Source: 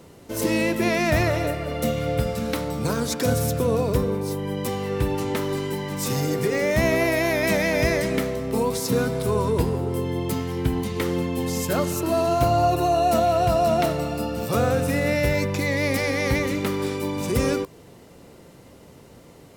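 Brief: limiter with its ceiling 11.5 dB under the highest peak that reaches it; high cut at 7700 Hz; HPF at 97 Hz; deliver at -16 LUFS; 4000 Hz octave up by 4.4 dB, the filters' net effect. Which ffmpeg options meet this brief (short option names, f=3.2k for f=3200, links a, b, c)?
-af "highpass=97,lowpass=7.7k,equalizer=f=4k:t=o:g=6,volume=12dB,alimiter=limit=-7.5dB:level=0:latency=1"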